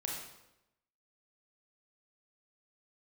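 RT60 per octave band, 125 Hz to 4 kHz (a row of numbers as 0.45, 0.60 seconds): 0.95, 0.95, 0.95, 0.85, 0.80, 0.75 seconds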